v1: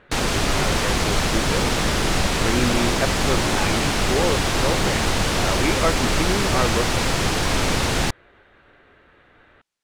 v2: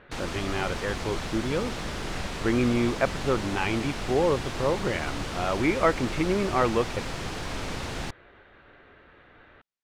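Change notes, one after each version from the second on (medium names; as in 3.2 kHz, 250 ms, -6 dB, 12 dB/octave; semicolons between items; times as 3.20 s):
background -12.0 dB; master: add treble shelf 6.5 kHz -7 dB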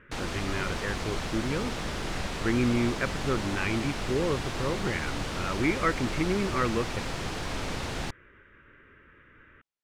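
speech: add static phaser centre 1.8 kHz, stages 4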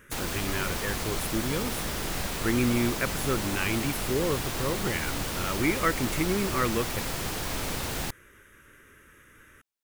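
speech: remove low-pass 3 kHz 24 dB/octave; master: remove distance through air 79 m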